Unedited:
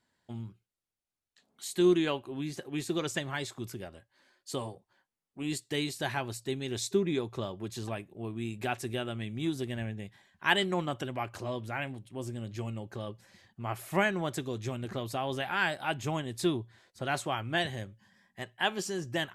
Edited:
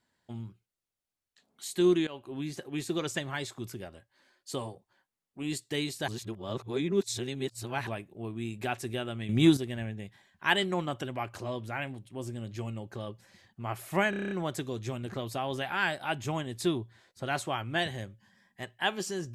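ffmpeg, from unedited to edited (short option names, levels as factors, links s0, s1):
-filter_complex "[0:a]asplit=13[s0][s1][s2][s3][s4][s5][s6][s7][s8][s9][s10][s11][s12];[s0]atrim=end=2.07,asetpts=PTS-STARTPTS,afade=t=out:st=2.066:d=0.004:c=hsin:silence=0.105925[s13];[s1]atrim=start=2.07:end=6.082,asetpts=PTS-STARTPTS,afade=t=in:d=0.26:silence=0.105925[s14];[s2]atrim=start=6.078:end=7.872,asetpts=PTS-STARTPTS,areverse[s15];[s3]atrim=start=7.868:end=9.292[s16];[s4]atrim=start=9.288:end=9.572,asetpts=PTS-STARTPTS,volume=3.55[s17];[s5]atrim=start=9.568:end=14.132[s18];[s6]atrim=start=14.098:end=14.132[s19];[s7]atrim=start=14.098:end=14.132[s20];[s8]atrim=start=14.098:end=14.132[s21];[s9]atrim=start=14.098:end=14.132[s22];[s10]atrim=start=14.098:end=14.132[s23];[s11]atrim=start=14.098:end=14.132[s24];[s12]atrim=start=14.098[s25];[s13][s14]concat=n=2:v=0:a=1[s26];[s26][s15]acrossfade=d=0.004:c1=hsin:c2=hsin[s27];[s27][s16]acrossfade=d=0.004:c1=hsin:c2=hsin[s28];[s28][s17]acrossfade=d=0.004:c1=hsin:c2=hsin[s29];[s29][s18]acrossfade=d=0.004:c1=hsin:c2=hsin[s30];[s30][s19]acrossfade=d=0.004:c1=hsin:c2=hsin[s31];[s31][s20]acrossfade=d=0.004:c1=hsin:c2=hsin[s32];[s32][s21]acrossfade=d=0.004:c1=hsin:c2=hsin[s33];[s33][s22]acrossfade=d=0.004:c1=hsin:c2=hsin[s34];[s34][s23]acrossfade=d=0.004:c1=hsin:c2=hsin[s35];[s35][s24]acrossfade=d=0.004:c1=hsin:c2=hsin[s36];[s36][s25]acrossfade=d=0.004:c1=hsin:c2=hsin"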